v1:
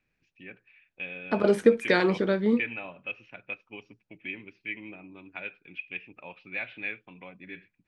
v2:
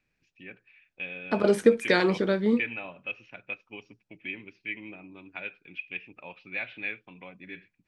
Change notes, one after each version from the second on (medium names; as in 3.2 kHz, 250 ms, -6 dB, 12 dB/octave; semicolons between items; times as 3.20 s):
master: add tone controls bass 0 dB, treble +5 dB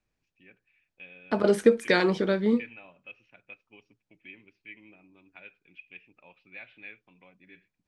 first voice -11.0 dB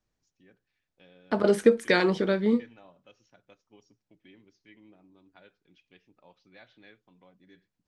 first voice: remove resonant low-pass 2.5 kHz, resonance Q 9.3